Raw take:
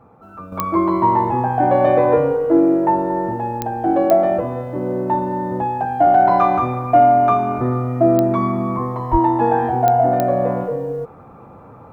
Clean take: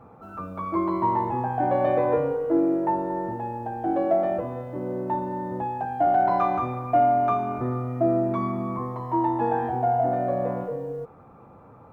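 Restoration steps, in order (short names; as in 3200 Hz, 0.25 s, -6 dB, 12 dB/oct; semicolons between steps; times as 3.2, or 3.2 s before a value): de-click; 9.11–9.23 HPF 140 Hz 24 dB/oct; gain 0 dB, from 0.52 s -8 dB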